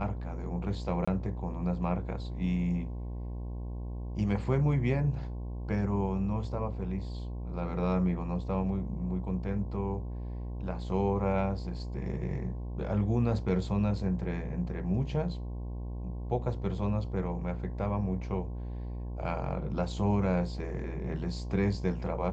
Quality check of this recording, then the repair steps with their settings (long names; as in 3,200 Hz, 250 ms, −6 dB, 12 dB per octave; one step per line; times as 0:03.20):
mains buzz 60 Hz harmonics 18 −37 dBFS
0:01.05–0:01.07: drop-out 25 ms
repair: hum removal 60 Hz, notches 18
repair the gap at 0:01.05, 25 ms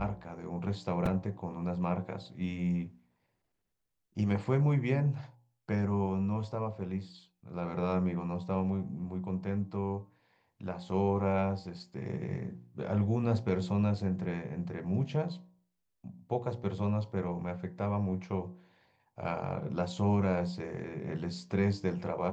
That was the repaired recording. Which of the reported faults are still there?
none of them is left